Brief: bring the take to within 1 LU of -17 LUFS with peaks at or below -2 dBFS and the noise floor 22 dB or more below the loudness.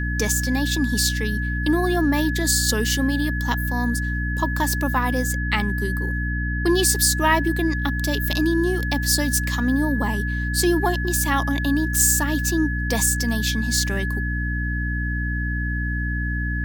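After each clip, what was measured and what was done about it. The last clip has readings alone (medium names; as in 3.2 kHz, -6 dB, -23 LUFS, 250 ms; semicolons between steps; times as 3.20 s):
hum 60 Hz; highest harmonic 300 Hz; hum level -23 dBFS; steady tone 1.7 kHz; tone level -28 dBFS; loudness -21.5 LUFS; peak level -5.0 dBFS; loudness target -17.0 LUFS
-> de-hum 60 Hz, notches 5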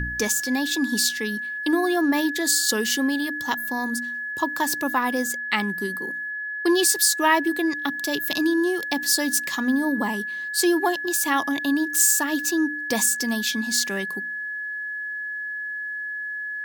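hum not found; steady tone 1.7 kHz; tone level -28 dBFS
-> band-stop 1.7 kHz, Q 30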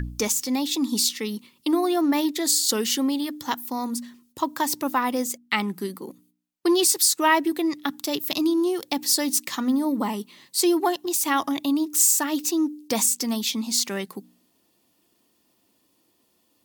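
steady tone not found; loudness -23.0 LUFS; peak level -5.5 dBFS; loudness target -17.0 LUFS
-> trim +6 dB; peak limiter -2 dBFS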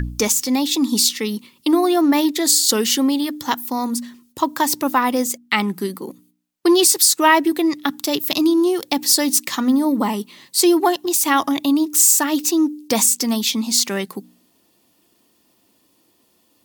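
loudness -17.5 LUFS; peak level -2.0 dBFS; noise floor -61 dBFS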